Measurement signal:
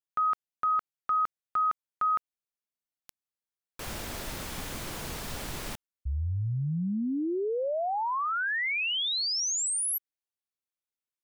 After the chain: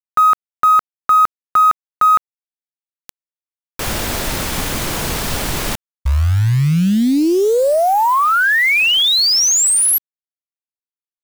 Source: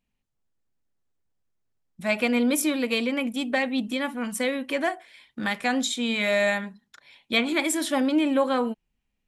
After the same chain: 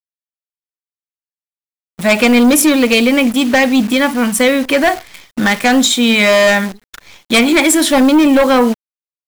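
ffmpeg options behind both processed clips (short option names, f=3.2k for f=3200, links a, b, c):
-af "acrusher=bits=8:dc=4:mix=0:aa=0.000001,aeval=exprs='0.316*(cos(1*acos(clip(val(0)/0.316,-1,1)))-cos(1*PI/2))+0.112*(cos(5*acos(clip(val(0)/0.316,-1,1)))-cos(5*PI/2))+0.00562*(cos(6*acos(clip(val(0)/0.316,-1,1)))-cos(6*PI/2))+0.00562*(cos(8*acos(clip(val(0)/0.316,-1,1)))-cos(8*PI/2))':c=same,volume=7.5dB"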